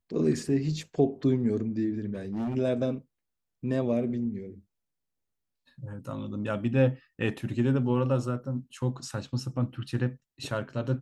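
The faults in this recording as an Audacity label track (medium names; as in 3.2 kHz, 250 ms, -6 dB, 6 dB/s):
2.130000	2.560000	clipped -28 dBFS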